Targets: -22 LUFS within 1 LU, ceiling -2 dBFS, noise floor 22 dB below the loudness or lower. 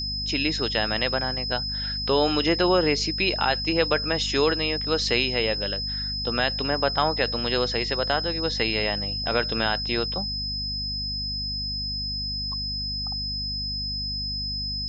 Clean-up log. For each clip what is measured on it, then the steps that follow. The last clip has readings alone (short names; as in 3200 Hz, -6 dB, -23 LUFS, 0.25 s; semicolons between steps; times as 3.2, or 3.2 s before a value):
hum 50 Hz; harmonics up to 250 Hz; hum level -32 dBFS; steady tone 5100 Hz; tone level -28 dBFS; loudness -24.5 LUFS; peak -7.0 dBFS; loudness target -22.0 LUFS
-> notches 50/100/150/200/250 Hz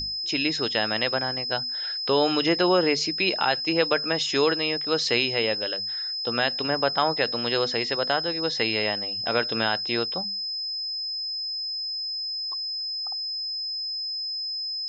hum none; steady tone 5100 Hz; tone level -28 dBFS
-> notch 5100 Hz, Q 30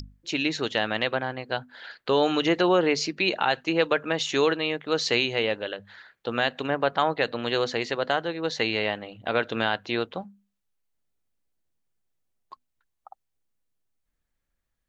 steady tone none; loudness -26.0 LUFS; peak -8.0 dBFS; loudness target -22.0 LUFS
-> gain +4 dB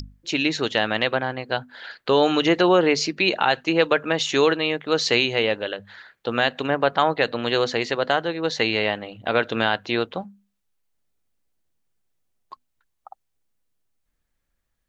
loudness -22.0 LUFS; peak -4.0 dBFS; noise floor -75 dBFS